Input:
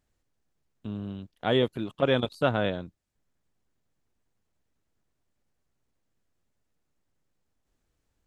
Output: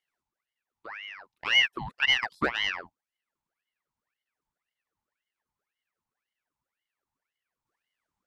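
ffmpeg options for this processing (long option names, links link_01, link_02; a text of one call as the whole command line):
ffmpeg -i in.wav -af "aeval=exprs='0.299*(cos(1*acos(clip(val(0)/0.299,-1,1)))-cos(1*PI/2))+0.0133*(cos(8*acos(clip(val(0)/0.299,-1,1)))-cos(8*PI/2))':channel_layout=same,highpass=frequency=400:width_type=q:width=5,aeval=exprs='val(0)*sin(2*PI*1500*n/s+1500*0.7/1.9*sin(2*PI*1.9*n/s))':channel_layout=same,volume=-5.5dB" out.wav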